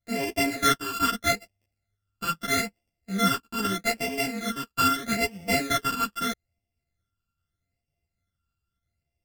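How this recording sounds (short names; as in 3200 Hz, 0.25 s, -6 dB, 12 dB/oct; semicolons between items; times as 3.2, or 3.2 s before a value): a buzz of ramps at a fixed pitch in blocks of 64 samples; phasing stages 12, 0.79 Hz, lowest notch 650–1300 Hz; tremolo saw up 4.1 Hz, depth 35%; a shimmering, thickened sound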